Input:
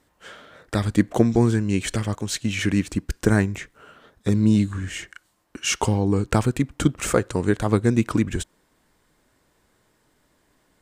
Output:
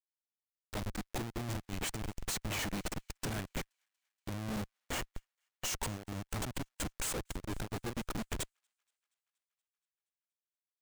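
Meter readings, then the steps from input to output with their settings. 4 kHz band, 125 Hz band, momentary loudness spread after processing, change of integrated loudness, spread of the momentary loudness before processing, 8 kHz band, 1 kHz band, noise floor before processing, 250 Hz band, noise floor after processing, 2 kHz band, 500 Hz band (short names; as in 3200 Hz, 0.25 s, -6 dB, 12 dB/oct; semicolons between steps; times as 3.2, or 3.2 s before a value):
-10.0 dB, -19.0 dB, 7 LU, -17.0 dB, 11 LU, -9.0 dB, -13.0 dB, -66 dBFS, -21.0 dB, under -85 dBFS, -13.0 dB, -19.5 dB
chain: pre-emphasis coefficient 0.9; Schmitt trigger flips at -36 dBFS; on a send: thin delay 0.237 s, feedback 72%, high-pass 1500 Hz, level -21 dB; on the sum: upward expander 2.5:1, over -53 dBFS; gain +5.5 dB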